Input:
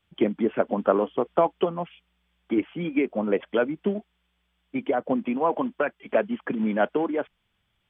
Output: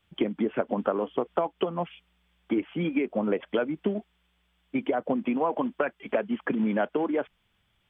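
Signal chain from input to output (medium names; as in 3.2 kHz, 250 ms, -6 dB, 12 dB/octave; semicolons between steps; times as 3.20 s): compression 6:1, threshold -25 dBFS, peak gain reduction 11 dB; trim +2.5 dB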